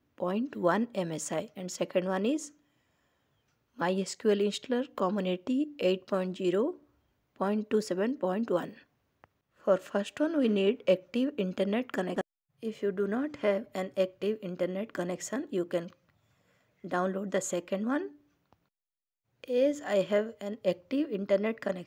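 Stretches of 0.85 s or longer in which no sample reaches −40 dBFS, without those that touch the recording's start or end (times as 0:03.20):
0:02.48–0:03.79
0:15.88–0:16.84
0:18.08–0:19.44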